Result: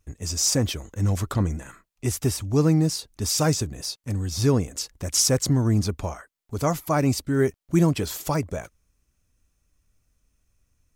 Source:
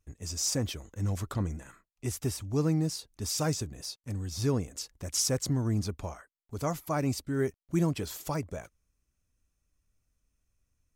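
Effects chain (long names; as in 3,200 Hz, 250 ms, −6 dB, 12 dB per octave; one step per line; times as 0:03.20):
level +8 dB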